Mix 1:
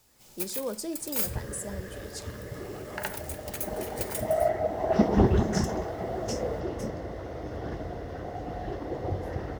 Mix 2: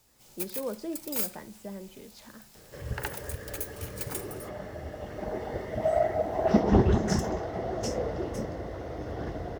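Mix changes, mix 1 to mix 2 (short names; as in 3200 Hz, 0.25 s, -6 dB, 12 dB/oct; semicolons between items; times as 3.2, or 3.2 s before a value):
speech: add air absorption 250 m; first sound: send -8.5 dB; second sound: entry +1.55 s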